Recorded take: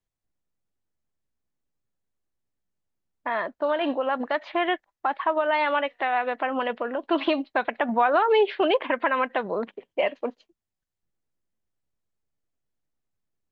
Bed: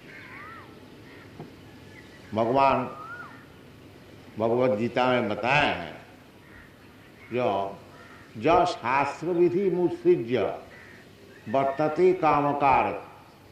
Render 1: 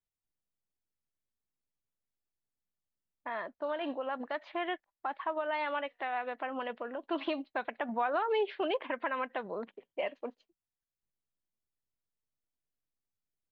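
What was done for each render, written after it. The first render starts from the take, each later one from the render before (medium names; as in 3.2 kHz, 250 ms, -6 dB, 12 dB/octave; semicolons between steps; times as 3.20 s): trim -10.5 dB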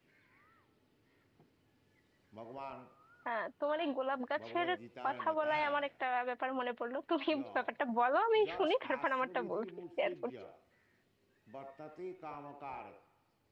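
add bed -25 dB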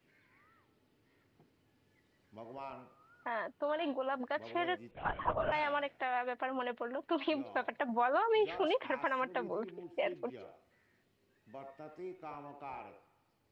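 4.91–5.52 s: LPC vocoder at 8 kHz whisper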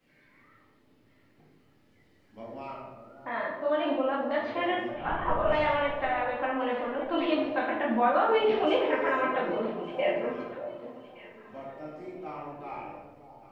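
echo whose repeats swap between lows and highs 583 ms, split 870 Hz, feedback 53%, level -10.5 dB; simulated room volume 310 m³, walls mixed, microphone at 2.1 m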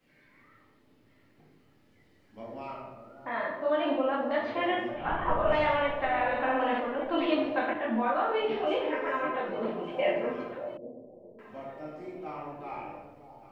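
6.09–6.80 s: flutter echo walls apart 8.6 m, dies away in 0.87 s; 7.73–9.62 s: detune thickener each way 15 cents; 10.77–11.39 s: steep low-pass 650 Hz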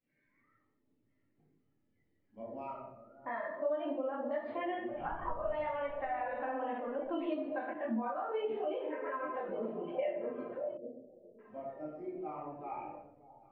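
compression 6:1, threshold -34 dBFS, peak gain reduction 13 dB; spectral contrast expander 1.5:1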